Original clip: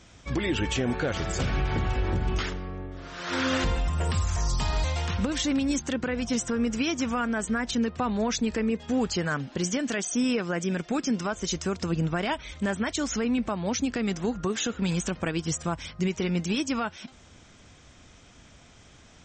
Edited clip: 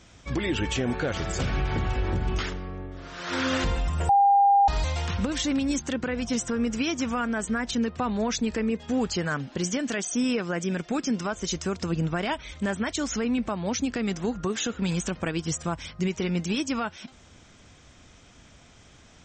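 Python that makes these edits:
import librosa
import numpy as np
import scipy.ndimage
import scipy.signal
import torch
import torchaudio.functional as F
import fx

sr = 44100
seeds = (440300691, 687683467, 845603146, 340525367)

y = fx.edit(x, sr, fx.bleep(start_s=4.09, length_s=0.59, hz=801.0, db=-15.0), tone=tone)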